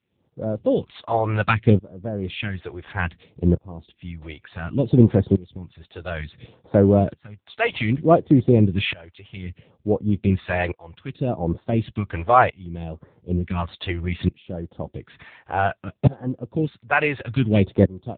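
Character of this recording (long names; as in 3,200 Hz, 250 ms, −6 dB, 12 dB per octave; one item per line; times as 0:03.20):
tremolo saw up 0.56 Hz, depth 95%
phaser sweep stages 2, 0.63 Hz, lowest notch 200–2,600 Hz
AMR narrowband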